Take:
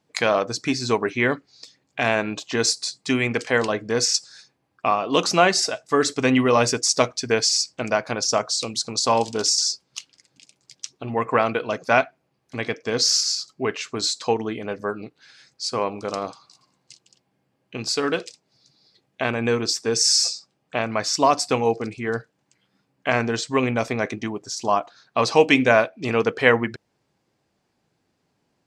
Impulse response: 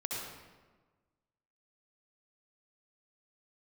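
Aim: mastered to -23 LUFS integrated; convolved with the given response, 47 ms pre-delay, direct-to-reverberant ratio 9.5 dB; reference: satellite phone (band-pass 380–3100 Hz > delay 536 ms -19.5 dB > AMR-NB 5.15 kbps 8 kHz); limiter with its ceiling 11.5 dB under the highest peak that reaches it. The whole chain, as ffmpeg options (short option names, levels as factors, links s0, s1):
-filter_complex "[0:a]alimiter=limit=0.237:level=0:latency=1,asplit=2[s0][s1];[1:a]atrim=start_sample=2205,adelay=47[s2];[s1][s2]afir=irnorm=-1:irlink=0,volume=0.237[s3];[s0][s3]amix=inputs=2:normalize=0,highpass=380,lowpass=3100,aecho=1:1:536:0.106,volume=2.24" -ar 8000 -c:a libopencore_amrnb -b:a 5150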